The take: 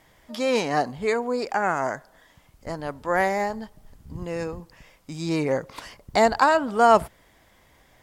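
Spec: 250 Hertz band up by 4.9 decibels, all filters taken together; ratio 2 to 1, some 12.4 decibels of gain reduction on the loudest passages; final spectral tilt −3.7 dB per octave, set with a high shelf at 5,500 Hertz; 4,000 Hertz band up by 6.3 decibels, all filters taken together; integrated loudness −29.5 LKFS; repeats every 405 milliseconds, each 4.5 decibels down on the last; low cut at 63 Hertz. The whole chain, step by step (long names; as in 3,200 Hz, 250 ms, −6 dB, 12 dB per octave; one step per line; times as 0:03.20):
high-pass filter 63 Hz
parametric band 250 Hz +6 dB
parametric band 4,000 Hz +9 dB
high-shelf EQ 5,500 Hz −3.5 dB
downward compressor 2 to 1, threshold −34 dBFS
repeating echo 405 ms, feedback 60%, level −4.5 dB
level +1.5 dB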